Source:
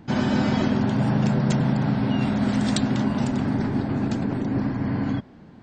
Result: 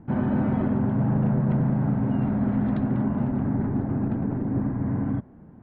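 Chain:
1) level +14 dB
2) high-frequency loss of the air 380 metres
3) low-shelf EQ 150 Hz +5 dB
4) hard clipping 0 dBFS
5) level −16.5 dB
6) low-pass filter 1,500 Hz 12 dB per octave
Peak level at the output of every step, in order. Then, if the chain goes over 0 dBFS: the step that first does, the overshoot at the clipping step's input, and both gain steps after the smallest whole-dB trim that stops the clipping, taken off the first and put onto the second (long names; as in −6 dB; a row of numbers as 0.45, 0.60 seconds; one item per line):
+5.5, +3.5, +4.5, 0.0, −16.5, −16.5 dBFS
step 1, 4.5 dB
step 1 +9 dB, step 5 −11.5 dB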